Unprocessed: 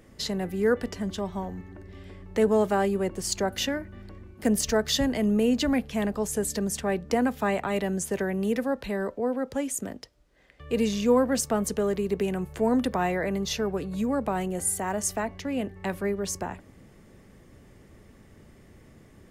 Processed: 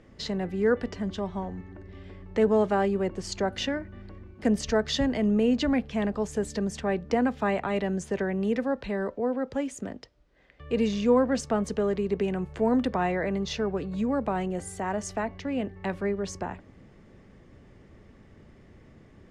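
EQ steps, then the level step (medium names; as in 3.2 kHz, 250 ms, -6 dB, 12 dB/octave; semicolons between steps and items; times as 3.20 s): distance through air 110 m; 0.0 dB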